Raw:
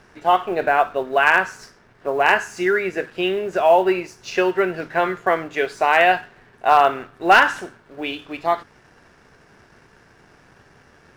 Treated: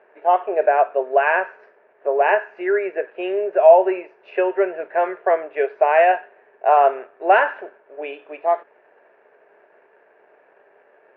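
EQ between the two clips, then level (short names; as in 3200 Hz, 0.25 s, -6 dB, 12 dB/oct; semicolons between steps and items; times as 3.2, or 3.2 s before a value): speaker cabinet 410–2700 Hz, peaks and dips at 410 Hz +8 dB, 620 Hz +10 dB, 910 Hz +5 dB, 1700 Hz +7 dB, 2500 Hz +8 dB; bell 520 Hz +11 dB 1.7 oct; -13.0 dB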